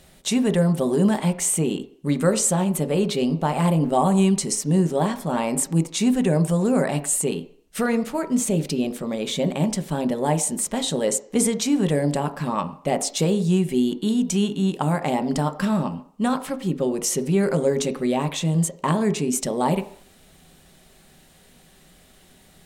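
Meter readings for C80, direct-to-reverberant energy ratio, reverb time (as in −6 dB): 17.5 dB, 7.5 dB, 0.55 s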